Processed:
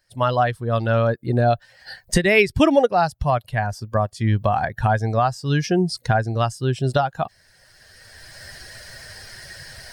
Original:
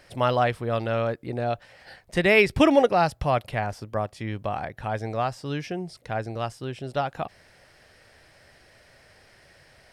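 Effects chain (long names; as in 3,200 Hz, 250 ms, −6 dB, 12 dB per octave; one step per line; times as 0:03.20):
spectral dynamics exaggerated over time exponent 1.5
camcorder AGC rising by 16 dB per second
level +3.5 dB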